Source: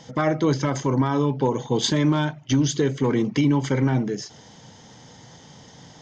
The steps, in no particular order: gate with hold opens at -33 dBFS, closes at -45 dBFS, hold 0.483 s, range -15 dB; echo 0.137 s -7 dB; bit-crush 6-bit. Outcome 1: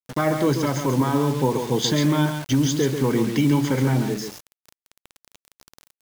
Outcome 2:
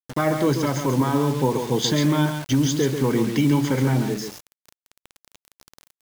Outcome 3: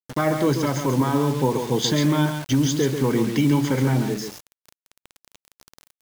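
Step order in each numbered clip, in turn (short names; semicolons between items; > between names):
echo > bit-crush > gate with hold; gate with hold > echo > bit-crush; echo > gate with hold > bit-crush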